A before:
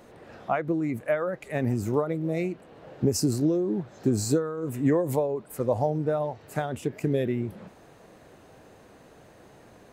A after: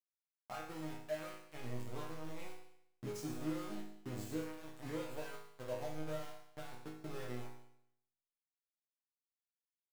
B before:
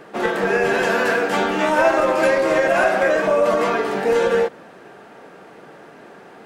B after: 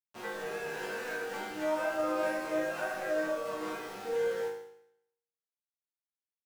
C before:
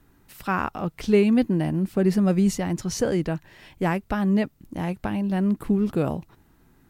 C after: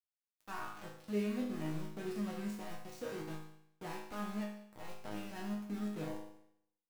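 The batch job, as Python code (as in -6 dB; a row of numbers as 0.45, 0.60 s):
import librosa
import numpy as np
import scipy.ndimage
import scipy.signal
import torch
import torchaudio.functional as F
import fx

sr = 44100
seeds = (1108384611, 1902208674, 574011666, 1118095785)

y = np.where(np.abs(x) >= 10.0 ** (-25.0 / 20.0), x, 0.0)
y = fx.resonator_bank(y, sr, root=44, chord='minor', decay_s=0.73)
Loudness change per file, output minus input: -18.0, -16.0, -18.0 LU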